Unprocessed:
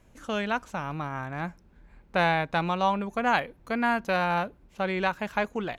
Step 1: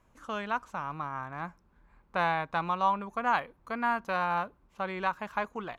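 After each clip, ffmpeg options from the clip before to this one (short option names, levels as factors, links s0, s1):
-af "equalizer=f=1100:w=1.9:g=11,volume=0.376"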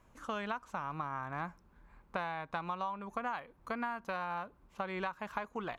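-af "acompressor=threshold=0.0178:ratio=12,volume=1.19"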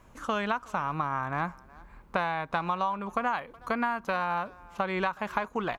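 -filter_complex "[0:a]asplit=2[s0][s1];[s1]adelay=370,highpass=300,lowpass=3400,asoftclip=type=hard:threshold=0.0335,volume=0.0794[s2];[s0][s2]amix=inputs=2:normalize=0,volume=2.66"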